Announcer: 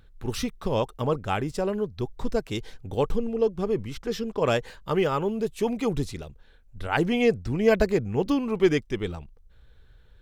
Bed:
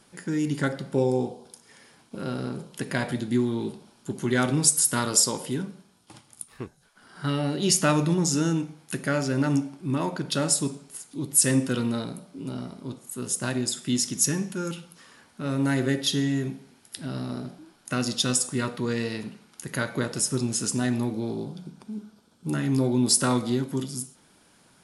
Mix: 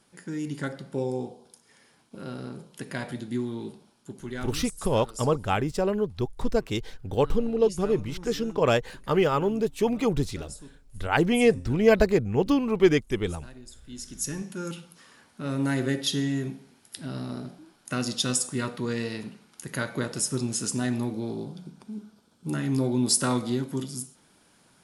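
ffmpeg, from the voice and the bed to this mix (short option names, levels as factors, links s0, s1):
-filter_complex "[0:a]adelay=4200,volume=1.19[s0];[1:a]volume=3.98,afade=t=out:st=3.81:d=0.87:silence=0.199526,afade=t=in:st=13.88:d=0.9:silence=0.125893[s1];[s0][s1]amix=inputs=2:normalize=0"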